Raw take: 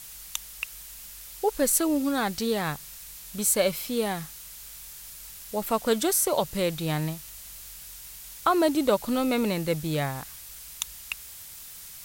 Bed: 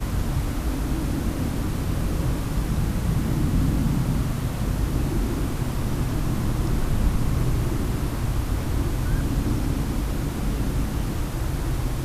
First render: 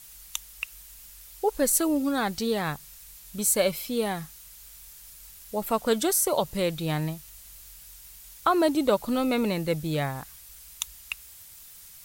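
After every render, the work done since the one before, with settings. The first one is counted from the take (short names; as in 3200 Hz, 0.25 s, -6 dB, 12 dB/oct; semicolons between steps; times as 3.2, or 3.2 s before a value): denoiser 6 dB, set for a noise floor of -44 dBFS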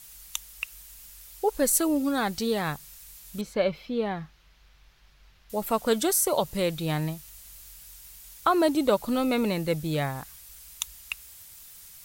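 3.41–5.5 air absorption 270 m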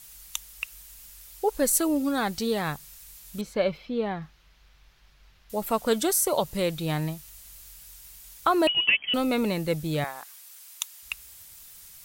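3.77–4.22 high shelf 7500 Hz -9.5 dB; 8.67–9.14 inverted band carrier 3200 Hz; 10.04–11.03 HPF 610 Hz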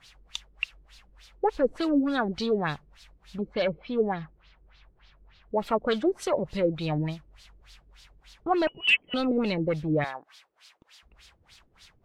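soft clip -20 dBFS, distortion -14 dB; LFO low-pass sine 3.4 Hz 320–4400 Hz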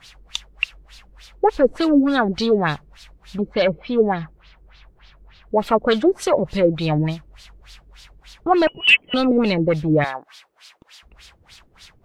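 gain +8.5 dB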